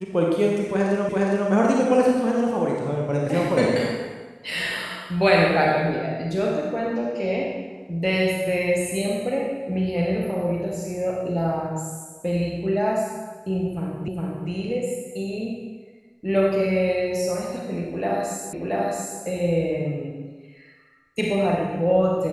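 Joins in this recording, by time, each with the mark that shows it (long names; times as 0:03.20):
0:01.09: the same again, the last 0.41 s
0:14.08: the same again, the last 0.41 s
0:18.53: the same again, the last 0.68 s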